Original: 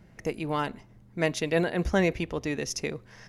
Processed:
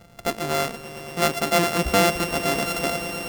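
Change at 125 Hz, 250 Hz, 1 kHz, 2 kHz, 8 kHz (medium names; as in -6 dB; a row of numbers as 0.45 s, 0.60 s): +2.0 dB, +2.5 dB, +10.5 dB, +7.0 dB, +9.5 dB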